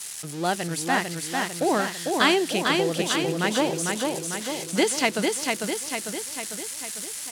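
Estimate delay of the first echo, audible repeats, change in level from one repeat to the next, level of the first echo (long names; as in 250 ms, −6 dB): 449 ms, 7, −4.5 dB, −3.5 dB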